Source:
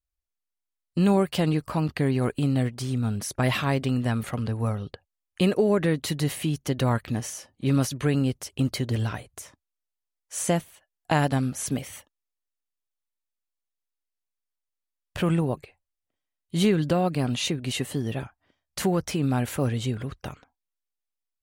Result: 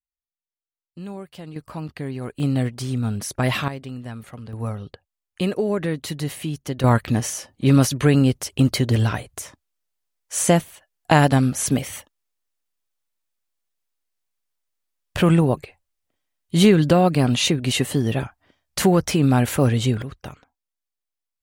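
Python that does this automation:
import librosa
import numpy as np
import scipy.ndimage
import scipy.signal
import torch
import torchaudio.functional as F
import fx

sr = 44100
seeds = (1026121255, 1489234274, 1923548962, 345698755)

y = fx.gain(x, sr, db=fx.steps((0.0, -14.0), (1.56, -6.0), (2.4, 2.5), (3.68, -8.5), (4.53, -1.0), (6.84, 7.5), (20.02, 0.0)))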